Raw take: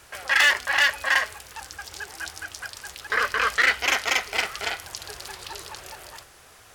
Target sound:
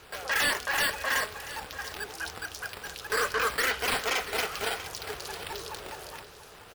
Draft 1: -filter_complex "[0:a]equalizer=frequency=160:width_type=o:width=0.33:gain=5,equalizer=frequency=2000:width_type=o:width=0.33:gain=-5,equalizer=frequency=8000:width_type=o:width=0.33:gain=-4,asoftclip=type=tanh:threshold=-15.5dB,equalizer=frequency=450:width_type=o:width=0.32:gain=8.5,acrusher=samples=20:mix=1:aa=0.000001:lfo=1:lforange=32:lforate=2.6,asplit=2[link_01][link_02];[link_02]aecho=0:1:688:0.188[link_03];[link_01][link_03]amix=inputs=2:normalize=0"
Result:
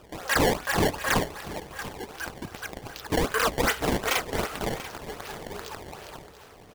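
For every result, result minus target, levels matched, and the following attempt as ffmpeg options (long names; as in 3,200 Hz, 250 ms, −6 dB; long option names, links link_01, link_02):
sample-and-hold swept by an LFO: distortion +15 dB; soft clipping: distortion −8 dB
-filter_complex "[0:a]equalizer=frequency=160:width_type=o:width=0.33:gain=5,equalizer=frequency=2000:width_type=o:width=0.33:gain=-5,equalizer=frequency=8000:width_type=o:width=0.33:gain=-4,asoftclip=type=tanh:threshold=-15.5dB,equalizer=frequency=450:width_type=o:width=0.32:gain=8.5,acrusher=samples=4:mix=1:aa=0.000001:lfo=1:lforange=6.4:lforate=2.6,asplit=2[link_01][link_02];[link_02]aecho=0:1:688:0.188[link_03];[link_01][link_03]amix=inputs=2:normalize=0"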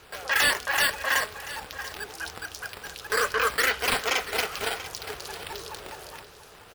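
soft clipping: distortion −8 dB
-filter_complex "[0:a]equalizer=frequency=160:width_type=o:width=0.33:gain=5,equalizer=frequency=2000:width_type=o:width=0.33:gain=-5,equalizer=frequency=8000:width_type=o:width=0.33:gain=-4,asoftclip=type=tanh:threshold=-23dB,equalizer=frequency=450:width_type=o:width=0.32:gain=8.5,acrusher=samples=4:mix=1:aa=0.000001:lfo=1:lforange=6.4:lforate=2.6,asplit=2[link_01][link_02];[link_02]aecho=0:1:688:0.188[link_03];[link_01][link_03]amix=inputs=2:normalize=0"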